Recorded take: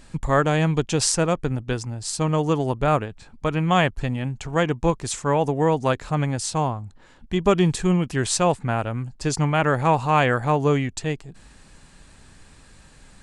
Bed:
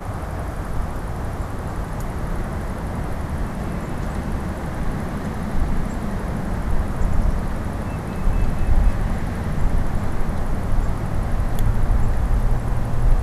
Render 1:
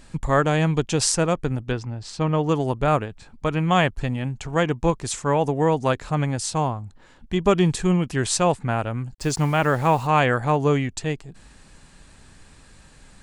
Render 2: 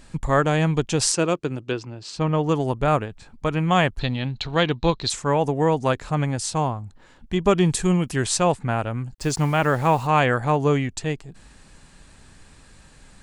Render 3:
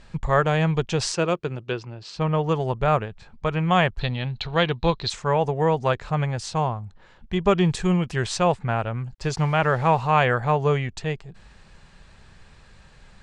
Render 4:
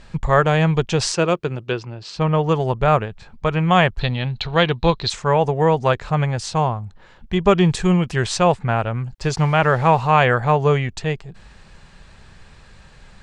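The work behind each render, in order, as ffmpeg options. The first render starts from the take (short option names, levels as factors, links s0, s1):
-filter_complex "[0:a]asettb=1/sr,asplit=3[s0][s1][s2];[s0]atrim=end=1.724[s3];[s1]atrim=start=1.72:end=2.49,asetpts=PTS-STARTPTS,afade=t=in:d=0.004:c=qsin,afade=t=out:st=0.766:d=0.004:c=qsin,lowpass=3800[s4];[s2]atrim=start=2.486[s5];[s3][s4]acrossfade=d=0.004:c1=hsin:c2=qsin[s6];[s6][s5]acrossfade=d=0.004:c1=qsin:c2=hsin,asettb=1/sr,asplit=3[s7][s8][s9];[s7]atrim=end=9.124[s10];[s8]atrim=start=9.12:end=10.07,asetpts=PTS-STARTPTS,afade=t=in:d=0.004:c=qsin,afade=t=out:st=0.946:d=0.004:c=qsin,acrusher=bits=6:mix=0:aa=0.5[s11];[s9]atrim=start=10.066[s12];[s10][s11]acrossfade=d=0.004:c1=hsin:c2=qsin[s13];[s13][s12]acrossfade=d=0.004:c1=qsin:c2=hsin"
-filter_complex "[0:a]asettb=1/sr,asplit=3[s0][s1][s2];[s0]atrim=end=1.124[s3];[s1]atrim=start=1.12:end=2.16,asetpts=PTS-STARTPTS,afade=t=in:d=0.004:c=qsin,afade=t=out:st=1.036:d=0.004:c=qsin,highpass=160,equalizer=f=220:t=q:w=4:g=-5,equalizer=f=350:t=q:w=4:g=5,equalizer=f=790:t=q:w=4:g=-5,equalizer=f=1900:t=q:w=4:g=-4,equalizer=f=2700:t=q:w=4:g=5,equalizer=f=4300:t=q:w=4:g=3,lowpass=f=9100:w=0.5412,lowpass=f=9100:w=1.3066[s4];[s2]atrim=start=2.156[s5];[s3][s4]acrossfade=d=0.004:c1=hsin:c2=qsin[s6];[s6][s5]acrossfade=d=0.004:c1=qsin:c2=hsin,asettb=1/sr,asplit=3[s7][s8][s9];[s7]atrim=end=3.994[s10];[s8]atrim=start=3.99:end=5.1,asetpts=PTS-STARTPTS,afade=t=in:d=0.004:c=qsin,afade=t=out:st=1.106:d=0.004:c=qsin,lowpass=f=4000:t=q:w=12[s11];[s9]atrim=start=5.096[s12];[s10][s11]acrossfade=d=0.004:c1=hsin:c2=qsin[s13];[s13][s12]acrossfade=d=0.004:c1=qsin:c2=hsin,asettb=1/sr,asplit=3[s14][s15][s16];[s14]atrim=end=7.724[s17];[s15]atrim=start=7.72:end=8.23,asetpts=PTS-STARTPTS,afade=t=in:d=0.004:c=qsin,afade=t=out:st=0.506:d=0.004:c=qsin,highshelf=f=8300:g=11.5[s18];[s16]atrim=start=8.226[s19];[s17][s18]acrossfade=d=0.004:c1=hsin:c2=qsin[s20];[s20][s19]acrossfade=d=0.004:c1=qsin:c2=hsin"
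-af "lowpass=4700,equalizer=f=280:t=o:w=0.28:g=-14.5"
-af "volume=1.68,alimiter=limit=0.708:level=0:latency=1"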